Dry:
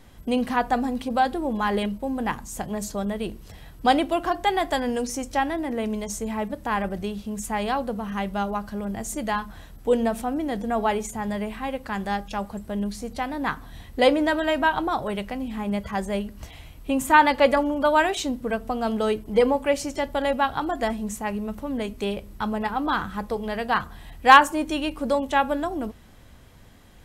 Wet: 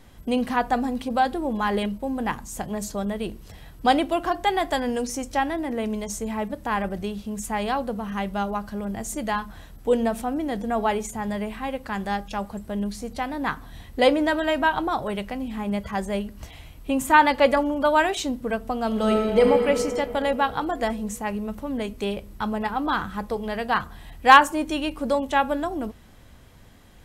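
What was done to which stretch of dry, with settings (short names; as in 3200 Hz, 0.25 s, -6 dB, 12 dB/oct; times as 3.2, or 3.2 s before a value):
18.87–19.47 reverb throw, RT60 2.9 s, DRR 0 dB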